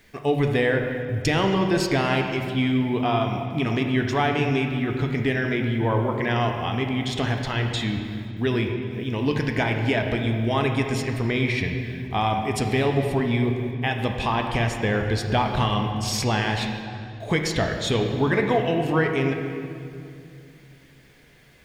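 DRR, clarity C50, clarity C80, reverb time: 3.0 dB, 4.5 dB, 6.0 dB, 2.6 s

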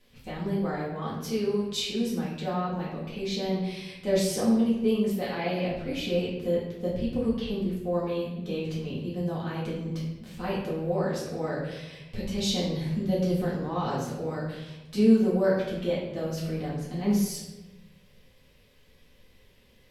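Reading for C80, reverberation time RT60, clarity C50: 5.0 dB, 1.1 s, 2.5 dB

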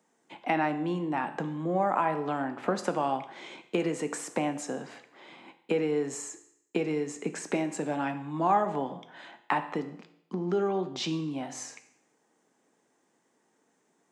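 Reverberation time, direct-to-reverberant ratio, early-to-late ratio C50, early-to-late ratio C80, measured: 0.75 s, 8.0 dB, 12.5 dB, 15.0 dB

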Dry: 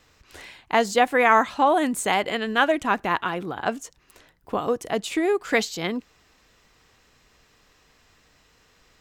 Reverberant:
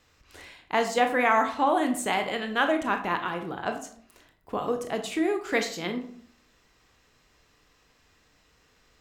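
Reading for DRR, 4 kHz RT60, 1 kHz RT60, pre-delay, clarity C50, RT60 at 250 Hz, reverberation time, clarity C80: 5.5 dB, 0.35 s, 0.55 s, 21 ms, 10.0 dB, 0.70 s, 0.60 s, 13.5 dB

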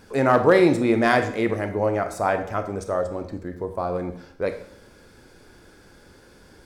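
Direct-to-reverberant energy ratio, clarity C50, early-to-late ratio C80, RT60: 8.0 dB, 10.5 dB, 13.5 dB, 0.65 s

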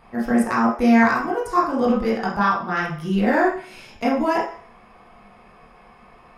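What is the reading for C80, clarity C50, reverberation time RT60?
9.0 dB, 3.5 dB, 0.50 s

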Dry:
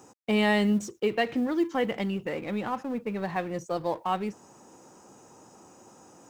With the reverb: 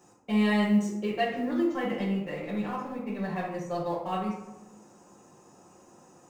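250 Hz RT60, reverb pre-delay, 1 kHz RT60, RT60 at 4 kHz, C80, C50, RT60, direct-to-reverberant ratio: 1.2 s, 5 ms, 0.90 s, 0.50 s, 7.0 dB, 3.5 dB, 0.95 s, -6.5 dB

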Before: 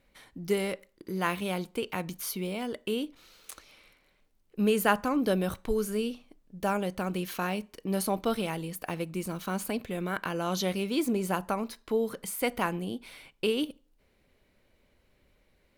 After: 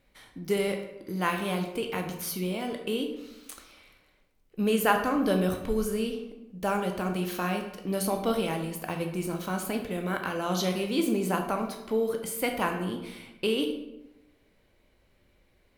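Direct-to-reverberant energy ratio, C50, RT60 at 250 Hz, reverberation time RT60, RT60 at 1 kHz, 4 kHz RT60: 3.5 dB, 7.0 dB, 1.1 s, 0.95 s, 0.95 s, 0.60 s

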